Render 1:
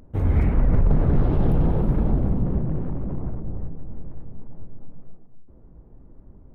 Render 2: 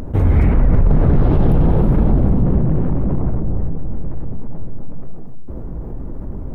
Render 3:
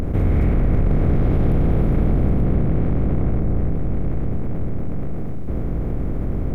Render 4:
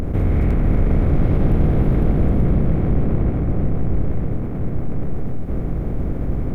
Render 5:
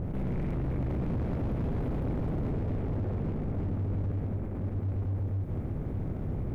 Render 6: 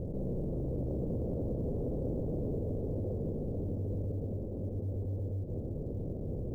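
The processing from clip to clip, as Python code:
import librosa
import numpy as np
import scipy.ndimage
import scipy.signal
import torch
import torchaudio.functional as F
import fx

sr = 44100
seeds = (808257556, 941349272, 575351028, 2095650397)

y1 = fx.env_flatten(x, sr, amount_pct=50)
y1 = F.gain(torch.from_numpy(y1), 4.5).numpy()
y2 = fx.bin_compress(y1, sr, power=0.4)
y2 = fx.peak_eq(y2, sr, hz=910.0, db=-7.5, octaves=0.25)
y2 = F.gain(torch.from_numpy(y2), -8.0).numpy()
y3 = y2 + 10.0 ** (-5.5 / 20.0) * np.pad(y2, (int(506 * sr / 1000.0), 0))[:len(y2)]
y4 = y3 * np.sin(2.0 * np.pi * 97.0 * np.arange(len(y3)) / sr)
y4 = np.clip(y4, -10.0 ** (-19.0 / 20.0), 10.0 ** (-19.0 / 20.0))
y4 = F.gain(torch.from_numpy(y4), -8.0).numpy()
y5 = fx.ladder_lowpass(y4, sr, hz=590.0, resonance_pct=55)
y5 = fx.quant_float(y5, sr, bits=6)
y5 = F.gain(torch.from_numpy(y5), 5.0).numpy()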